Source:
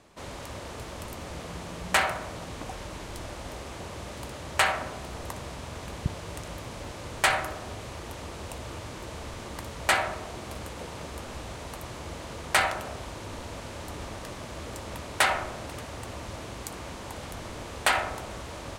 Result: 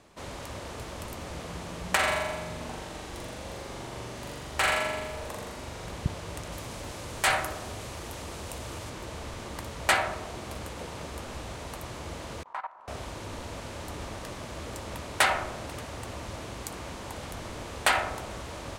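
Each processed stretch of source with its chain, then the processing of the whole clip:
1.95–5.90 s: flange 1.9 Hz, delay 1.9 ms, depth 4.8 ms, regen -63% + hard clipper -17.5 dBFS + flutter echo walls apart 7.2 m, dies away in 1.2 s
6.52–8.90 s: treble shelf 6 kHz +6.5 dB + transient shaper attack -5 dB, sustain 0 dB
12.43–12.88 s: band-pass filter 990 Hz, Q 5.3 + level held to a coarse grid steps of 17 dB
whole clip: none

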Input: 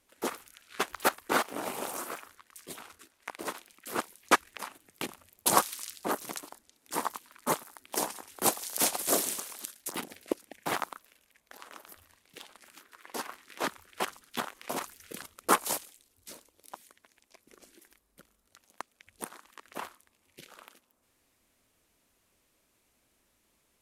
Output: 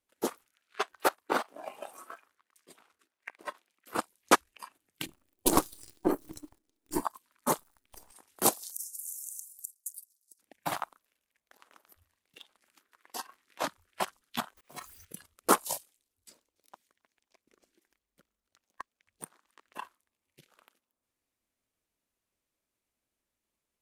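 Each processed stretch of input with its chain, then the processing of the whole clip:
0.45–3.95 s: high-pass 250 Hz 6 dB/octave + treble shelf 4.8 kHz -7 dB
5.06–7.02 s: partial rectifier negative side -12 dB + peaking EQ 320 Hz +13.5 dB 0.94 oct
7.58–8.12 s: partial rectifier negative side -7 dB + compression 8:1, threshold -40 dBFS
8.71–10.39 s: inverse Chebyshev high-pass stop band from 2.9 kHz + compression 16:1, threshold -33 dBFS
14.57–15.05 s: jump at every zero crossing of -42 dBFS + slow attack 295 ms
16.29–19.74 s: peaking EQ 11 kHz -6.5 dB 0.71 oct + feedback echo behind a high-pass 268 ms, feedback 54%, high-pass 2 kHz, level -17.5 dB
whole clip: spectral noise reduction 12 dB; dynamic bell 2.1 kHz, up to -5 dB, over -45 dBFS, Q 1; transient shaper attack +7 dB, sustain 0 dB; trim -3.5 dB

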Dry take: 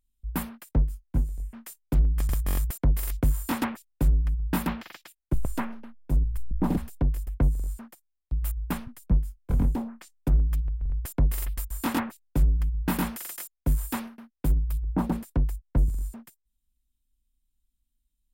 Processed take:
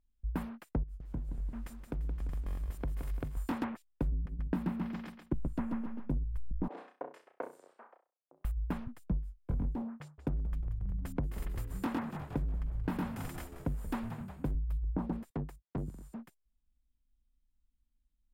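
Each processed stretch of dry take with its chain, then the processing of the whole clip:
0.83–3.37 s: compression 12:1, threshold -32 dBFS + bit-crushed delay 172 ms, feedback 55%, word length 9-bit, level -7 dB
4.12–6.18 s: peaking EQ 220 Hz +8 dB 1.2 oct + feedback delay 136 ms, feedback 29%, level -5 dB
6.68–8.45 s: level-controlled noise filter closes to 750 Hz, open at -18 dBFS + high-pass 480 Hz 24 dB/octave + flutter echo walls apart 5.6 m, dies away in 0.31 s
9.82–14.55 s: high-pass 64 Hz + frequency-shifting echo 179 ms, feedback 61%, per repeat -80 Hz, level -13 dB
15.30–16.15 s: high-pass 160 Hz + overload inside the chain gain 31 dB
whole clip: low-pass 1.4 kHz 6 dB/octave; compression, threshold -31 dBFS

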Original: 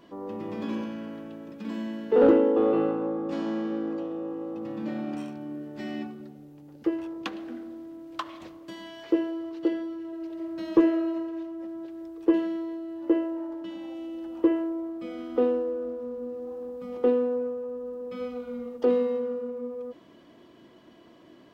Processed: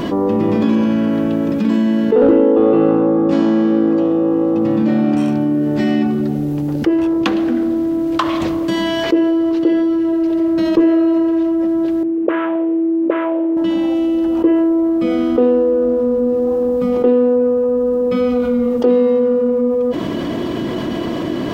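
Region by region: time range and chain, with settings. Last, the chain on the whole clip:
12.03–13.57 s: CVSD coder 16 kbps + auto-wah 220–1300 Hz, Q 2.4, up, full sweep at -21 dBFS
whole clip: bass shelf 370 Hz +7.5 dB; level flattener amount 70%; trim +1 dB

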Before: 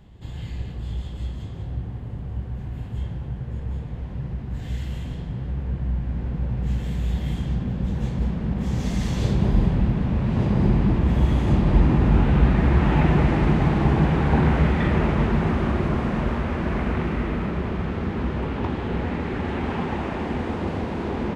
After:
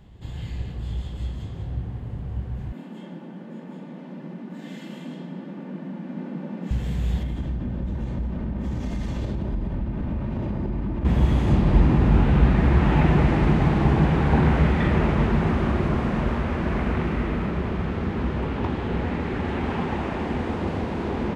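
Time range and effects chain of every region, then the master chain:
2.72–6.71 s: steep high-pass 160 Hz 96 dB/octave + tilt EQ -1.5 dB/octave + comb 3.4 ms, depth 44%
7.23–11.05 s: treble shelf 2.8 kHz -10 dB + comb 3.3 ms, depth 36% + compression, threshold -23 dBFS
whole clip: none

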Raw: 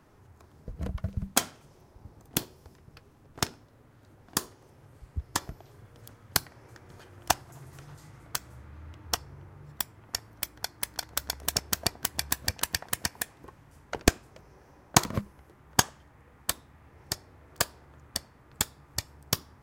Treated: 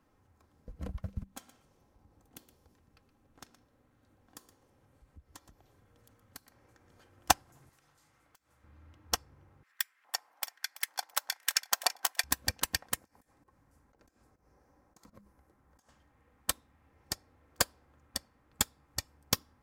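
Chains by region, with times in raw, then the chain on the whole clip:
1.23–6.96 s: band-stop 5 kHz, Q 23 + compression 2:1, threshold -48 dBFS + delay 120 ms -12 dB
7.69–8.64 s: bass shelf 470 Hz -11.5 dB + compression, threshold -52 dBFS
9.63–12.24 s: LFO high-pass square 1.2 Hz 790–1800 Hz + feedback delay 333 ms, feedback 32%, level -10.5 dB
12.96–15.89 s: compression, threshold -37 dBFS + slow attack 118 ms + peaking EQ 3 kHz -8 dB 0.86 oct
whole clip: comb 3.8 ms, depth 39%; upward expansion 1.5:1, over -42 dBFS

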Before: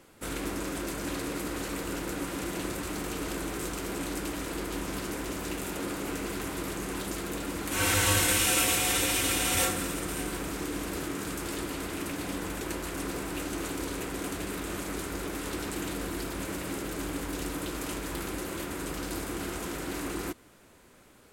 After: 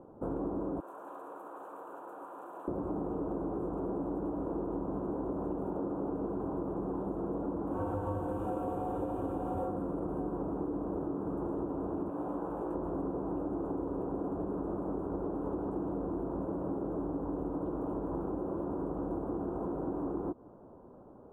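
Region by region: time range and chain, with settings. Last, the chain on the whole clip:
0.80–2.68 s: high-pass 1.2 kHz + treble shelf 7.9 kHz +6 dB
12.10–12.75 s: bass shelf 430 Hz -11.5 dB + doubling 17 ms -2.5 dB
whole clip: inverse Chebyshev low-pass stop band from 1.9 kHz, stop band 40 dB; bass shelf 91 Hz -9.5 dB; compression, threshold -39 dBFS; trim +7 dB

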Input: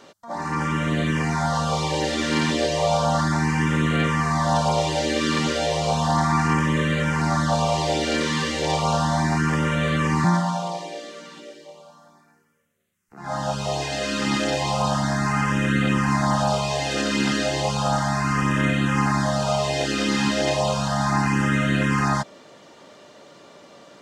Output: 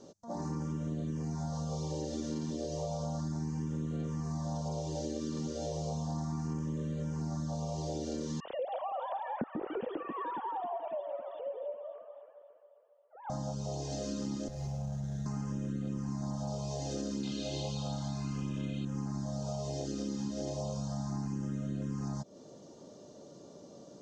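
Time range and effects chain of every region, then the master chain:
8.40–13.30 s: formants replaced by sine waves + echo whose repeats swap between lows and highs 137 ms, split 810 Hz, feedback 73%, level -8 dB
14.48–15.26 s: high-order bell 580 Hz -9 dB 2.6 oct + static phaser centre 1.1 kHz, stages 6 + sliding maximum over 9 samples
17.23–18.85 s: Butterworth band-stop 1.9 kHz, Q 7.2 + high-order bell 2.9 kHz +13 dB 1.3 oct
whole clip: FFT filter 180 Hz 0 dB, 490 Hz -3 dB, 2.2 kHz -26 dB, 6.4 kHz -2 dB, 10 kHz -21 dB; compression, threshold -34 dBFS

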